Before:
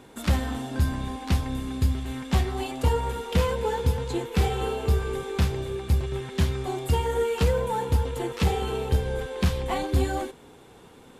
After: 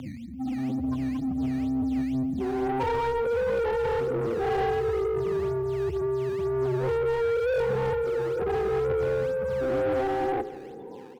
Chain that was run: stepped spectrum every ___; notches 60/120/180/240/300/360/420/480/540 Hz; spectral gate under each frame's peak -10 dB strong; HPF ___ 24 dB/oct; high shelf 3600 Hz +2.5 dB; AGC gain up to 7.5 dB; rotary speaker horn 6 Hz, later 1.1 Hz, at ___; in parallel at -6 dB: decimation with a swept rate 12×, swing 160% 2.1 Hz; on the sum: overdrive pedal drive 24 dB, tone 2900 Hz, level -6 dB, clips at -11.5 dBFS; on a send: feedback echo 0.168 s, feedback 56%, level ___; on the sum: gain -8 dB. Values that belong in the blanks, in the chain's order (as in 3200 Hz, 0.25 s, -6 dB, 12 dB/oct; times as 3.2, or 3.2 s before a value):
0.4 s, 90 Hz, 1.66, -17 dB